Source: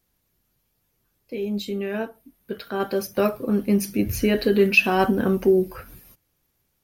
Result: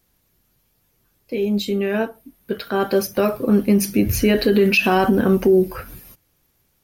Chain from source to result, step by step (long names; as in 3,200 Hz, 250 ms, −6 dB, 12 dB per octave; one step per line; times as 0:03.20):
brickwall limiter −14 dBFS, peak gain reduction 9 dB
level +6.5 dB